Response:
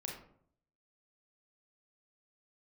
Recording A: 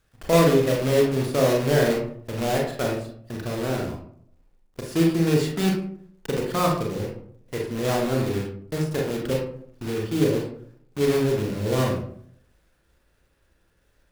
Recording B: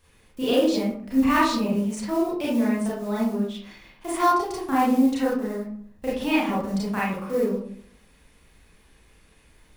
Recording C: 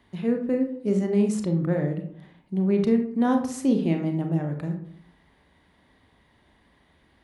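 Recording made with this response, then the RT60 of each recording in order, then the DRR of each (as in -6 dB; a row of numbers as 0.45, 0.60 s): A; 0.60, 0.60, 0.65 s; -1.0, -8.0, 4.0 dB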